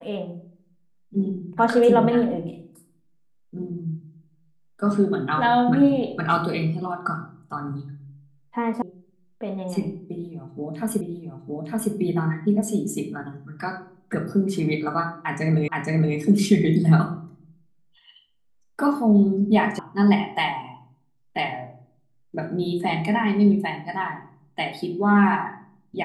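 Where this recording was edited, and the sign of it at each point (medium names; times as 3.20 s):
8.82 s: sound stops dead
11.01 s: repeat of the last 0.91 s
15.68 s: repeat of the last 0.47 s
19.79 s: sound stops dead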